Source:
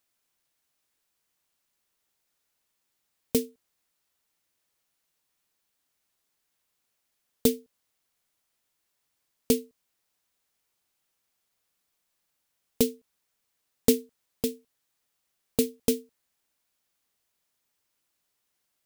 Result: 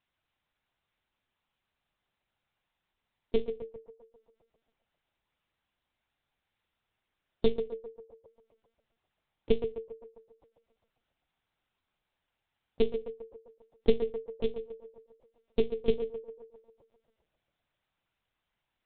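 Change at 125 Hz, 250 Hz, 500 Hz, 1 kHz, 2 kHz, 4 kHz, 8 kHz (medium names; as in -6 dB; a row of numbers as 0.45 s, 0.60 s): -4.0 dB, -7.5 dB, +1.0 dB, -0.5 dB, -3.0 dB, -8.0 dB, under -40 dB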